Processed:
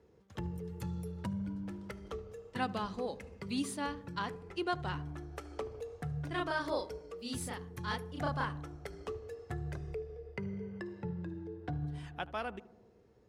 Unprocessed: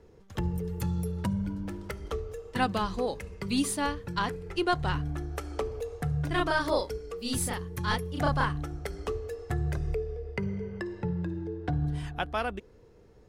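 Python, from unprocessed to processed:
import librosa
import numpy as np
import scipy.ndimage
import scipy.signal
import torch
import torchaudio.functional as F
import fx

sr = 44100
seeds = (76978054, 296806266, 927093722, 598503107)

p1 = scipy.signal.sosfilt(scipy.signal.butter(2, 76.0, 'highpass', fs=sr, output='sos'), x)
p2 = fx.high_shelf(p1, sr, hz=11000.0, db=-9.5)
p3 = p2 + fx.echo_filtered(p2, sr, ms=76, feedback_pct=74, hz=1100.0, wet_db=-17.0, dry=0)
y = p3 * 10.0 ** (-7.5 / 20.0)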